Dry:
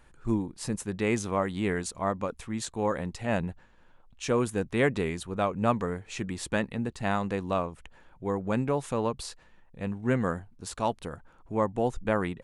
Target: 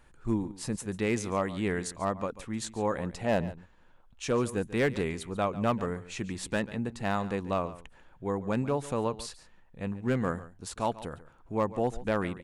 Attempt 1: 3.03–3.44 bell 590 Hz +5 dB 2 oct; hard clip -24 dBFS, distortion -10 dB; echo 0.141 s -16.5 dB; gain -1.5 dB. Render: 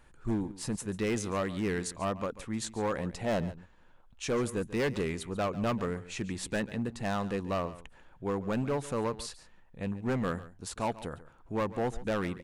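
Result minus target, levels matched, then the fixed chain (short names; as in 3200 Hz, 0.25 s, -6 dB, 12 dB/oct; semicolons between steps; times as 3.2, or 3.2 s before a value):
hard clip: distortion +11 dB
3.03–3.44 bell 590 Hz +5 dB 2 oct; hard clip -17.5 dBFS, distortion -21 dB; echo 0.141 s -16.5 dB; gain -1.5 dB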